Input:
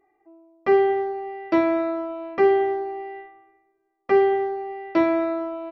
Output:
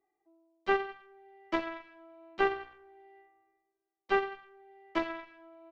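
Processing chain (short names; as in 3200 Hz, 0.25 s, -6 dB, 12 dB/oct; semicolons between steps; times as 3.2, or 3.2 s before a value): added harmonics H 3 -9 dB, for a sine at -7.5 dBFS; three-band squash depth 40%; gain -3.5 dB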